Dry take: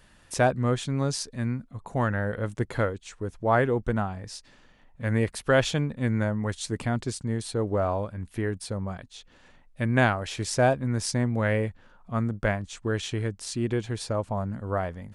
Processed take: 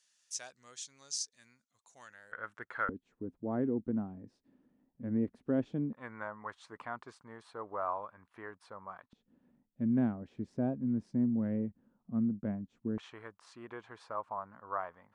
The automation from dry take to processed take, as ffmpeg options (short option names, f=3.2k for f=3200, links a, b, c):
-af "asetnsamples=n=441:p=0,asendcmd='2.32 bandpass f 1400;2.89 bandpass f 260;5.93 bandpass f 1100;9.13 bandpass f 230;12.98 bandpass f 1100',bandpass=f=6.2k:t=q:w=3.2:csg=0"